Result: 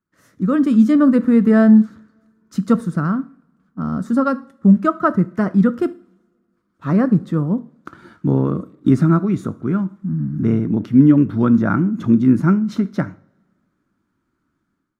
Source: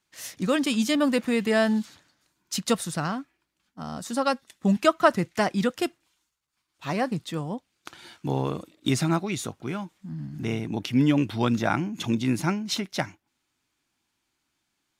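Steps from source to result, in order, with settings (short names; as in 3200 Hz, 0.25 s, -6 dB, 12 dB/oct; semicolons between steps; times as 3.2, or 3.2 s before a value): EQ curve 130 Hz 0 dB, 190 Hz +6 dB, 550 Hz -5 dB, 800 Hz -14 dB, 1300 Hz 0 dB, 2600 Hz -22 dB; AGC gain up to 13 dB; two-slope reverb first 0.43 s, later 2.1 s, from -27 dB, DRR 13 dB; gain -1.5 dB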